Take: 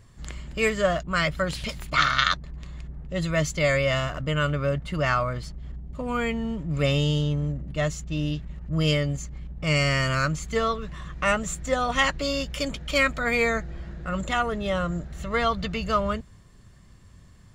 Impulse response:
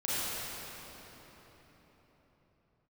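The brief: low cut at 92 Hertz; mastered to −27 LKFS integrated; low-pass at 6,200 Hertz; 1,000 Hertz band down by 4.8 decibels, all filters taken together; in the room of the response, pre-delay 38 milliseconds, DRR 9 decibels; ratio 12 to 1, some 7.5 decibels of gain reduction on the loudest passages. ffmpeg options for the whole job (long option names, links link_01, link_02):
-filter_complex "[0:a]highpass=92,lowpass=6200,equalizer=frequency=1000:width_type=o:gain=-7,acompressor=threshold=-26dB:ratio=12,asplit=2[link_01][link_02];[1:a]atrim=start_sample=2205,adelay=38[link_03];[link_02][link_03]afir=irnorm=-1:irlink=0,volume=-17.5dB[link_04];[link_01][link_04]amix=inputs=2:normalize=0,volume=4.5dB"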